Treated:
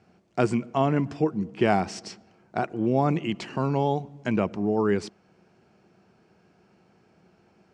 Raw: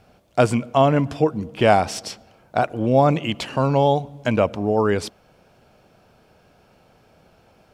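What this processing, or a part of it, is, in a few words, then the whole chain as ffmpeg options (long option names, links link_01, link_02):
car door speaker: -af "highpass=82,equalizer=frequency=190:width_type=q:width=4:gain=9,equalizer=frequency=360:width_type=q:width=4:gain=9,equalizer=frequency=560:width_type=q:width=4:gain=-6,equalizer=frequency=1900:width_type=q:width=4:gain=3,equalizer=frequency=3500:width_type=q:width=4:gain=-6,lowpass=frequency=7900:width=0.5412,lowpass=frequency=7900:width=1.3066,volume=-7dB"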